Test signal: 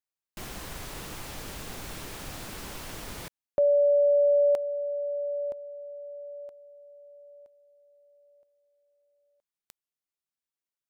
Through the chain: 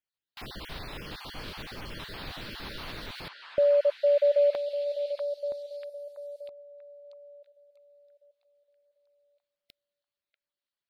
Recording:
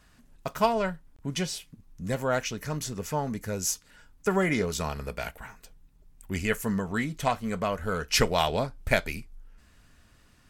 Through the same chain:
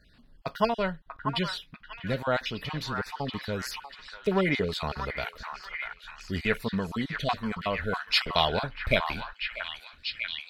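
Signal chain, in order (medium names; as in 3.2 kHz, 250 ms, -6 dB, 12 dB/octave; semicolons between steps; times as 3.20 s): random holes in the spectrogram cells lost 27%; resonant high shelf 5.3 kHz -9 dB, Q 3; repeats whose band climbs or falls 641 ms, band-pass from 1.3 kHz, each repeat 0.7 oct, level -2 dB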